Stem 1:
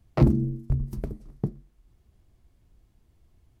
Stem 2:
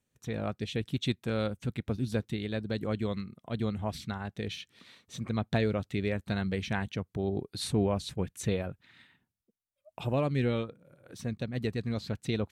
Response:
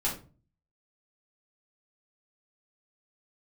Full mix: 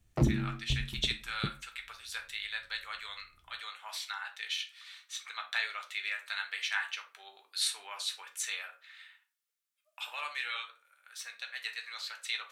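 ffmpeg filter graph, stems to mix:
-filter_complex "[0:a]volume=-8dB[link_01];[1:a]highpass=frequency=1300:width=0.5412,highpass=frequency=1300:width=1.3066,volume=1dB,asplit=2[link_02][link_03];[link_03]volume=-5dB[link_04];[2:a]atrim=start_sample=2205[link_05];[link_04][link_05]afir=irnorm=-1:irlink=0[link_06];[link_01][link_02][link_06]amix=inputs=3:normalize=0"

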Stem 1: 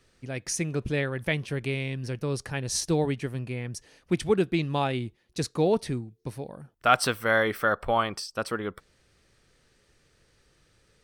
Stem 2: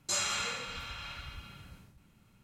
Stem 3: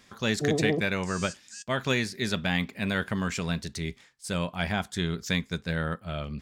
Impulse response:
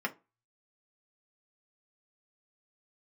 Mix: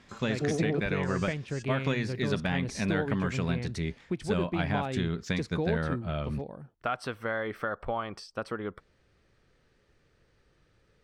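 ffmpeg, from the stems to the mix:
-filter_complex "[0:a]acompressor=threshold=-28dB:ratio=3,volume=-2dB[link_01];[1:a]volume=-18dB[link_02];[2:a]acompressor=threshold=-28dB:ratio=4,volume=1.5dB[link_03];[link_01][link_02][link_03]amix=inputs=3:normalize=0,aemphasis=mode=reproduction:type=75fm"

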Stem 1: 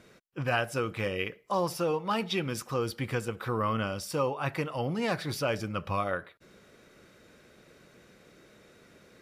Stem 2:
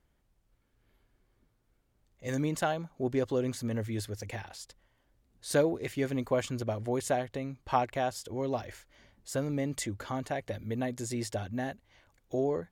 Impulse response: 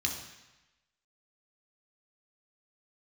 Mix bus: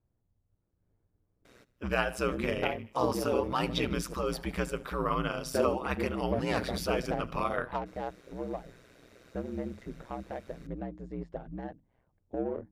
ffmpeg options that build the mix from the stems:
-filter_complex "[0:a]adelay=1450,volume=2dB,asplit=2[link_01][link_02];[link_02]volume=-21dB[link_03];[1:a]adynamicsmooth=sensitivity=1:basefreq=890,volume=-0.5dB[link_04];[link_03]aecho=0:1:76|152|228|304|380|456|532|608|684:1|0.57|0.325|0.185|0.106|0.0602|0.0343|0.0195|0.0111[link_05];[link_01][link_04][link_05]amix=inputs=3:normalize=0,bandreject=frequency=50:width_type=h:width=6,bandreject=frequency=100:width_type=h:width=6,bandreject=frequency=150:width_type=h:width=6,bandreject=frequency=200:width_type=h:width=6,bandreject=frequency=250:width_type=h:width=6,aeval=exprs='val(0)*sin(2*PI*62*n/s)':channel_layout=same"

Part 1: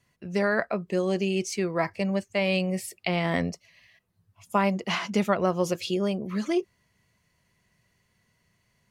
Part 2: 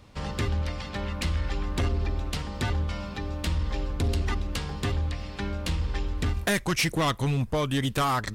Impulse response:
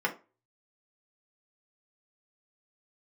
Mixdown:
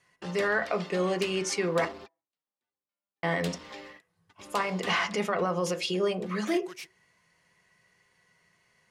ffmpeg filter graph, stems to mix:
-filter_complex "[0:a]lowpass=frequency=11000:width=0.5412,lowpass=frequency=11000:width=1.3066,alimiter=limit=-20.5dB:level=0:latency=1:release=62,volume=-0.5dB,asplit=3[link_01][link_02][link_03];[link_01]atrim=end=1.85,asetpts=PTS-STARTPTS,afade=type=out:start_time=1.846:duration=0.004:curve=hsin[link_04];[link_02]atrim=start=1.85:end=3.23,asetpts=PTS-STARTPTS,volume=0[link_05];[link_03]atrim=start=3.23,asetpts=PTS-STARTPTS,afade=type=in:duration=0.004:curve=hsin[link_06];[link_04][link_05][link_06]concat=n=3:v=0:a=1,asplit=3[link_07][link_08][link_09];[link_08]volume=-7dB[link_10];[1:a]highpass=250,volume=-4.5dB,afade=type=out:start_time=4.9:duration=0.37:silence=0.237137[link_11];[link_09]apad=whole_len=368070[link_12];[link_11][link_12]sidechaingate=range=-55dB:threshold=-58dB:ratio=16:detection=peak[link_13];[2:a]atrim=start_sample=2205[link_14];[link_10][link_14]afir=irnorm=-1:irlink=0[link_15];[link_07][link_13][link_15]amix=inputs=3:normalize=0,lowshelf=frequency=240:gain=-10"

